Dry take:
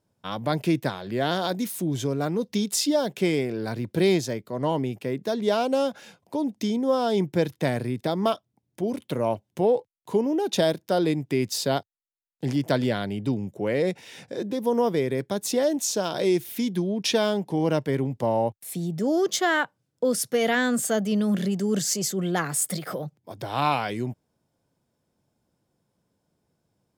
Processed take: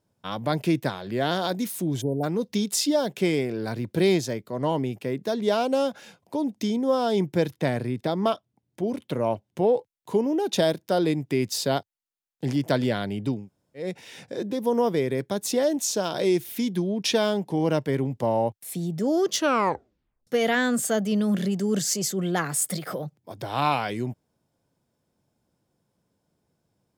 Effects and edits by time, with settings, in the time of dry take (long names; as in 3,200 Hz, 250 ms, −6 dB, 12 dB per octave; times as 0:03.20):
0:02.02–0:02.23: time-frequency box erased 960–8,600 Hz
0:07.56–0:09.75: high-shelf EQ 6,300 Hz −6 dB
0:13.39–0:13.86: fill with room tone, crossfade 0.24 s
0:19.30: tape stop 0.97 s